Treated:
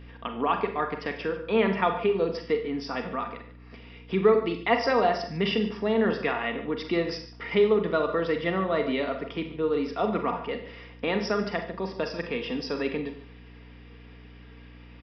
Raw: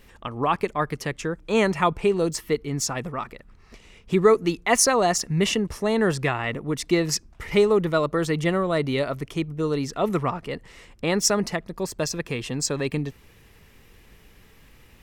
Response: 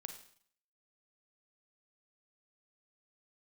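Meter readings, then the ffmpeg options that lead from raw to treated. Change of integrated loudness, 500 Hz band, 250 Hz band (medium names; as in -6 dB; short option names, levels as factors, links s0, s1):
-3.5 dB, -2.0 dB, -3.5 dB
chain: -filter_complex "[0:a]highpass=f=200:w=0.5412,highpass=f=200:w=1.3066,bandreject=f=4200:w=5.2,aecho=1:1:4.3:0.37,asplit=2[s0][s1];[s1]acompressor=threshold=0.0251:ratio=6,volume=1[s2];[s0][s2]amix=inputs=2:normalize=0,aeval=exprs='val(0)+0.0126*(sin(2*PI*60*n/s)+sin(2*PI*2*60*n/s)/2+sin(2*PI*3*60*n/s)/3+sin(2*PI*4*60*n/s)/4+sin(2*PI*5*60*n/s)/5)':c=same,asplit=2[s3][s4];[s4]adelay=145.8,volume=0.178,highshelf=f=4000:g=-3.28[s5];[s3][s5]amix=inputs=2:normalize=0[s6];[1:a]atrim=start_sample=2205,afade=t=out:st=0.23:d=0.01,atrim=end_sample=10584,asetrate=48510,aresample=44100[s7];[s6][s7]afir=irnorm=-1:irlink=0,aresample=11025,aresample=44100"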